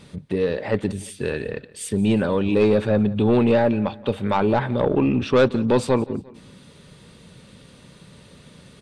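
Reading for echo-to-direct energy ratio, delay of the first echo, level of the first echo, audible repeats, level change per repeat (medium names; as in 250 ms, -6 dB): -20.0 dB, 175 ms, -21.0 dB, 2, -6.5 dB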